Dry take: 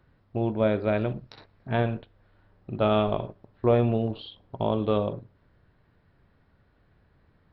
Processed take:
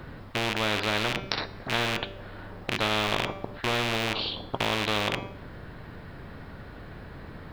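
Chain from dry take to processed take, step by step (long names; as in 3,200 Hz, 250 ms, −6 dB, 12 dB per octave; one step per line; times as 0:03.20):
loose part that buzzes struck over −33 dBFS, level −31 dBFS
hum removal 194.6 Hz, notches 37
every bin compressed towards the loudest bin 4 to 1
level +5 dB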